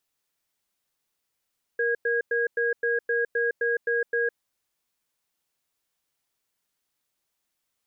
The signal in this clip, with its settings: cadence 470 Hz, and 1.64 kHz, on 0.16 s, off 0.10 s, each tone -24.5 dBFS 2.50 s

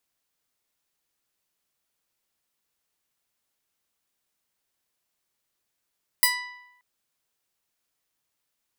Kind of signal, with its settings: plucked string B5, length 0.58 s, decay 0.90 s, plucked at 0.26, bright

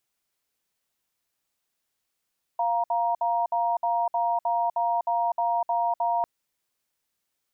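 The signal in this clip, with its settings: cadence 697 Hz, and 940 Hz, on 0.25 s, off 0.06 s, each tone -24.5 dBFS 3.65 s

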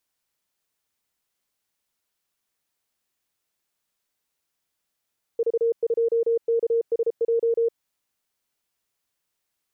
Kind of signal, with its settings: Morse "V2KSJ" 33 wpm 462 Hz -18 dBFS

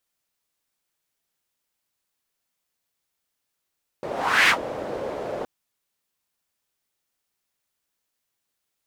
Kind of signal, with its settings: whoosh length 1.42 s, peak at 0.46 s, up 0.43 s, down 0.10 s, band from 530 Hz, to 2.1 kHz, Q 2.5, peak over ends 14.5 dB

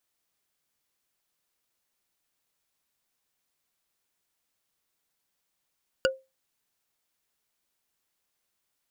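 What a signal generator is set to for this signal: wood hit bar, lowest mode 529 Hz, decay 0.24 s, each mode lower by 1.5 dB, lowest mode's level -17.5 dB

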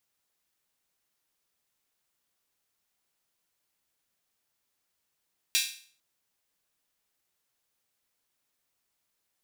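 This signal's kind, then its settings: open hi-hat length 0.45 s, high-pass 2.9 kHz, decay 0.47 s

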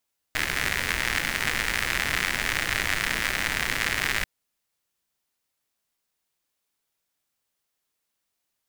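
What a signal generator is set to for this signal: rain from filtered ticks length 3.89 s, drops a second 120, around 1.9 kHz, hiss -6 dB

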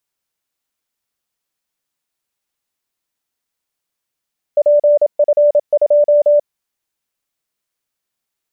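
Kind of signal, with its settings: Morse "PF2" 27 wpm 588 Hz -7 dBFS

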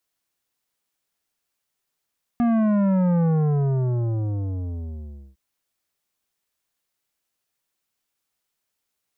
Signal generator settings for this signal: sub drop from 240 Hz, over 2.96 s, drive 11.5 dB, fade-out 2.11 s, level -18 dB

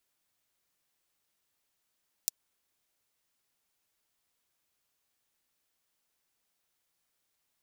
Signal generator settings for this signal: closed hi-hat, high-pass 5.3 kHz, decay 0.02 s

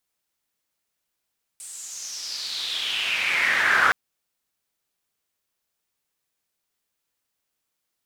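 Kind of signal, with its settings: swept filtered noise pink, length 2.32 s bandpass, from 8.7 kHz, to 1.4 kHz, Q 5.3, exponential, gain ramp +21 dB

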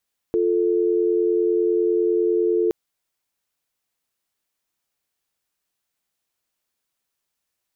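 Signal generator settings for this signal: call progress tone dial tone, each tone -19.5 dBFS 2.37 s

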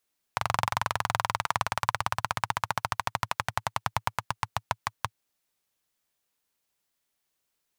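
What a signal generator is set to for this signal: single-cylinder engine model, changing speed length 4.76 s, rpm 2800, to 600, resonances 110/950 Hz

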